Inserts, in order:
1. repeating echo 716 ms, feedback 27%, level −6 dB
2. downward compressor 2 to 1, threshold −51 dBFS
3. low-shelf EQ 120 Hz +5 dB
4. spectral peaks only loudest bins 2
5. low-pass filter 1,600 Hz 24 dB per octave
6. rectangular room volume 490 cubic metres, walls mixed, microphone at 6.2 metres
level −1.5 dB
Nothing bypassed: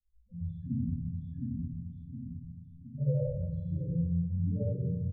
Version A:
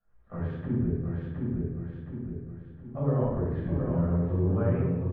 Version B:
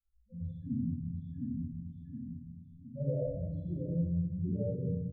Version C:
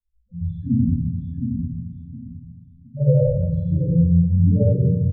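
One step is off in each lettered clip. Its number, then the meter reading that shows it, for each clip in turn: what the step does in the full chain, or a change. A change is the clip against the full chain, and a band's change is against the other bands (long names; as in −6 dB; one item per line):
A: 4, change in integrated loudness +5.0 LU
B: 3, change in integrated loudness −2.5 LU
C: 2, average gain reduction 9.5 dB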